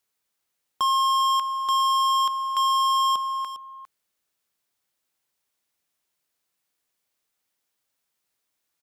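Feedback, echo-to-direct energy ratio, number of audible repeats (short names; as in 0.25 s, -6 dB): no steady repeat, -13.5 dB, 1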